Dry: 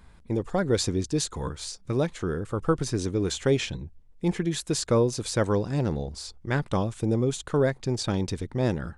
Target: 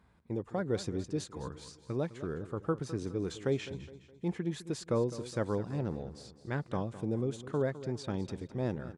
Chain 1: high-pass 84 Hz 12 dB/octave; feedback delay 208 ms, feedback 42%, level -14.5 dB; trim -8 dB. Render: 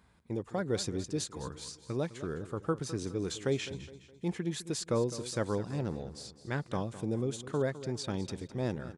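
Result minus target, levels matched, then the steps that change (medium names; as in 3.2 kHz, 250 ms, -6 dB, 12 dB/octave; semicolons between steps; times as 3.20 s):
8 kHz band +7.5 dB
add after high-pass: treble shelf 3 kHz -9.5 dB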